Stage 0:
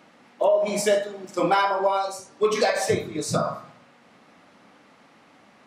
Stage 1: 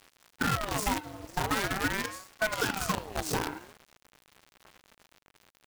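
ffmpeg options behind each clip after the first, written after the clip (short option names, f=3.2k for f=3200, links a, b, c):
-af "acompressor=threshold=-25dB:ratio=4,acrusher=bits=5:dc=4:mix=0:aa=0.000001,aeval=exprs='val(0)*sin(2*PI*700*n/s+700*0.6/0.44*sin(2*PI*0.44*n/s))':c=same"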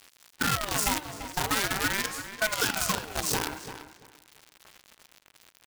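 -filter_complex "[0:a]highshelf=f=2.3k:g=9,areverse,acompressor=mode=upward:threshold=-48dB:ratio=2.5,areverse,asplit=2[a][b];[b]adelay=340,lowpass=f=3.5k:p=1,volume=-11dB,asplit=2[c][d];[d]adelay=340,lowpass=f=3.5k:p=1,volume=0.2,asplit=2[e][f];[f]adelay=340,lowpass=f=3.5k:p=1,volume=0.2[g];[a][c][e][g]amix=inputs=4:normalize=0,volume=-1dB"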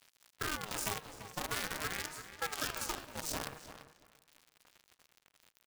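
-af "aeval=exprs='val(0)*sin(2*PI*160*n/s)':c=same,volume=-7.5dB"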